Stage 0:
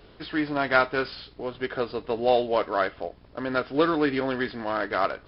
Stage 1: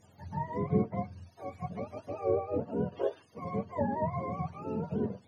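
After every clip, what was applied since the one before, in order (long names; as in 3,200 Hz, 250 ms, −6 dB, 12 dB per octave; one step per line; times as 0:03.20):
frequency axis turned over on the octave scale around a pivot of 530 Hz
treble cut that deepens with the level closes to 2,300 Hz, closed at −19.5 dBFS
gain on a spectral selection 0:02.92–0:03.22, 260–3,800 Hz +12 dB
level −7.5 dB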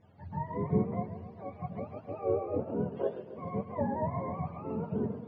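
high-frequency loss of the air 360 metres
feedback echo with a swinging delay time 134 ms, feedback 63%, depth 140 cents, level −12 dB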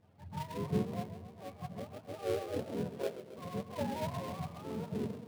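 gap after every zero crossing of 0.19 ms
level −4.5 dB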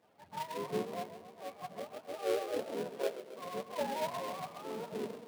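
high-pass filter 380 Hz 12 dB per octave
level +3.5 dB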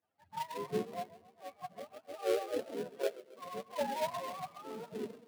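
spectral dynamics exaggerated over time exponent 1.5
level +2.5 dB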